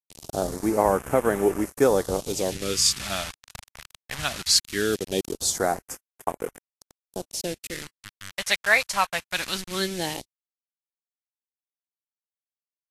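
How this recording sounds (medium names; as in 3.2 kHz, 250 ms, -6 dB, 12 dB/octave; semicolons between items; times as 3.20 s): a quantiser's noise floor 6-bit, dither none; phasing stages 2, 0.2 Hz, lowest notch 310–4000 Hz; Vorbis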